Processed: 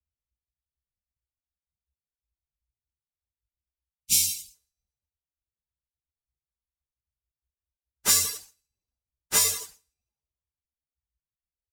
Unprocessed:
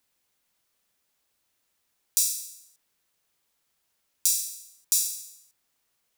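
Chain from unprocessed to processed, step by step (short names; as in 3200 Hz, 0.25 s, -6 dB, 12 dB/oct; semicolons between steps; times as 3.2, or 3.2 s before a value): Wiener smoothing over 25 samples; plain phase-vocoder stretch 1.9×; bell 63 Hz +14.5 dB 0.54 oct; careless resampling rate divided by 2×, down none, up hold; high shelf 12000 Hz -6 dB; on a send: echo 0.162 s -19 dB; on the sum: reverb removal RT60 0.52 s; in parallel at -0.5 dB: limiter -24.5 dBFS, peak gain reduction 11 dB; on the sum: spectral delete 3.85–4.54, 260–2100 Hz; three-band expander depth 70%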